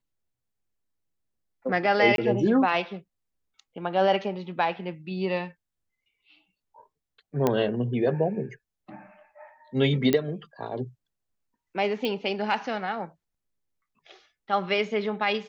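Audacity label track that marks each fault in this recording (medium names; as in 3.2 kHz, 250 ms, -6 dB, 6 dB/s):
2.160000	2.180000	dropout 22 ms
7.470000	7.470000	pop -10 dBFS
10.130000	10.130000	pop -10 dBFS
12.050000	12.050000	pop -17 dBFS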